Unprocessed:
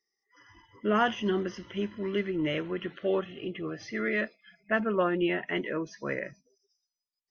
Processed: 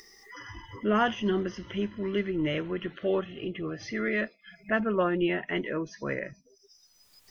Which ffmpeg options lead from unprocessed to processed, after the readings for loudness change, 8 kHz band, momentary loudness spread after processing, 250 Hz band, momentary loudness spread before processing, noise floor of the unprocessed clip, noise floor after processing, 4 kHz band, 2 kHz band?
+0.5 dB, n/a, 15 LU, +1.5 dB, 10 LU, under -85 dBFS, -63 dBFS, +0.5 dB, 0.0 dB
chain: -af "lowshelf=f=88:g=11,acompressor=mode=upward:threshold=-32dB:ratio=2.5"

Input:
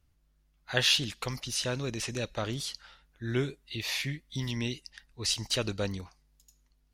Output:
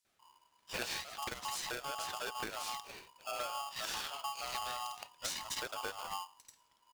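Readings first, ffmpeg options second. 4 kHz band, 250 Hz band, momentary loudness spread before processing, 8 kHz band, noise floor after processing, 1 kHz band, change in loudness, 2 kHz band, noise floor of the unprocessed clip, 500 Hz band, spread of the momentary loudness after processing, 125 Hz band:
-10.0 dB, -18.5 dB, 13 LU, -6.0 dB, -73 dBFS, +5.5 dB, -8.5 dB, -7.0 dB, -69 dBFS, -10.0 dB, 5 LU, -25.5 dB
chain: -filter_complex "[0:a]lowpass=10k,bandreject=f=50:t=h:w=6,bandreject=f=100:t=h:w=6,bandreject=f=150:t=h:w=6,bandreject=f=200:t=h:w=6,bandreject=f=250:t=h:w=6,bandreject=f=300:t=h:w=6,acrossover=split=250|4400[a][b][c];[b]adelay=50[d];[a]adelay=190[e];[e][d][c]amix=inputs=3:normalize=0,acompressor=threshold=-43dB:ratio=12,aeval=exprs='val(0)*sgn(sin(2*PI*980*n/s))':c=same,volume=6dB"

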